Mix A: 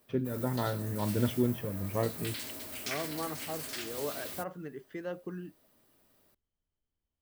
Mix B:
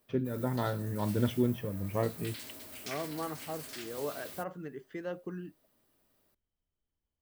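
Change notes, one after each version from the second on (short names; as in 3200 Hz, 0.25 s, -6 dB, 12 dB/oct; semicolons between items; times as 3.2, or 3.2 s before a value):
background -5.0 dB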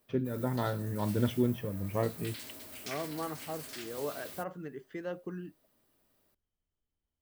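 none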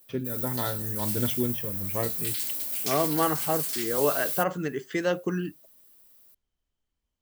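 second voice +11.5 dB; master: remove LPF 1500 Hz 6 dB/oct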